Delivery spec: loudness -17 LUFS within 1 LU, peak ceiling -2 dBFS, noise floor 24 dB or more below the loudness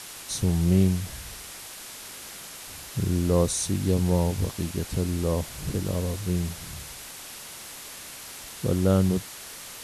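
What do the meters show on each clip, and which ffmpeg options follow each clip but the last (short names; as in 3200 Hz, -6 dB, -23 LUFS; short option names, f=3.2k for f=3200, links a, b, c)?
noise floor -42 dBFS; noise floor target -51 dBFS; loudness -26.5 LUFS; peak -9.5 dBFS; loudness target -17.0 LUFS
-> -af "afftdn=nr=9:nf=-42"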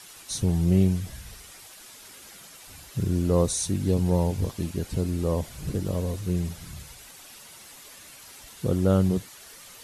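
noise floor -48 dBFS; noise floor target -50 dBFS
-> -af "afftdn=nr=6:nf=-48"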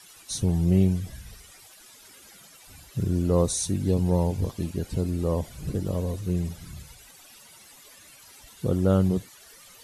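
noise floor -51 dBFS; loudness -26.0 LUFS; peak -10.0 dBFS; loudness target -17.0 LUFS
-> -af "volume=9dB,alimiter=limit=-2dB:level=0:latency=1"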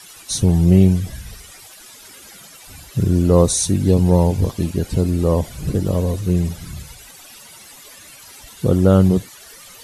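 loudness -17.0 LUFS; peak -2.0 dBFS; noise floor -42 dBFS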